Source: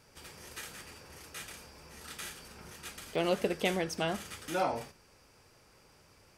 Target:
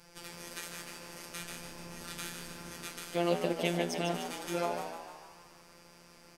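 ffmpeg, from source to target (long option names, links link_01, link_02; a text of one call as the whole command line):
ffmpeg -i in.wav -filter_complex "[0:a]asettb=1/sr,asplit=3[link_01][link_02][link_03];[link_01]atrim=end=1.344[link_04];[link_02]atrim=start=1.34:end=2.56,asetpts=PTS-STARTPTS,afade=type=in:duration=0.004:curve=qsin,afade=type=out:start_time=1.216:duration=0.004:curve=qsin,lowshelf=frequency=230:gain=8[link_05];[link_03]atrim=start=2.556[link_06];[link_04][link_05]acrossfade=duration=0.004:curve1=hsin:curve2=qsin[link_07];[link_07][link_06]acrossfade=duration=0.004:curve1=qsin:curve2=hsin,asplit=2[link_08][link_09];[link_09]acompressor=threshold=-46dB:ratio=6,volume=2dB[link_10];[link_08][link_10]amix=inputs=2:normalize=0,afftfilt=real='hypot(re,im)*cos(PI*b)':imag='0':win_size=1024:overlap=0.75,asplit=8[link_11][link_12][link_13][link_14][link_15][link_16][link_17][link_18];[link_12]adelay=150,afreqshift=71,volume=-7.5dB[link_19];[link_13]adelay=300,afreqshift=142,volume=-12.7dB[link_20];[link_14]adelay=450,afreqshift=213,volume=-17.9dB[link_21];[link_15]adelay=600,afreqshift=284,volume=-23.1dB[link_22];[link_16]adelay=750,afreqshift=355,volume=-28.3dB[link_23];[link_17]adelay=900,afreqshift=426,volume=-33.5dB[link_24];[link_18]adelay=1050,afreqshift=497,volume=-38.7dB[link_25];[link_11][link_19][link_20][link_21][link_22][link_23][link_24][link_25]amix=inputs=8:normalize=0" out.wav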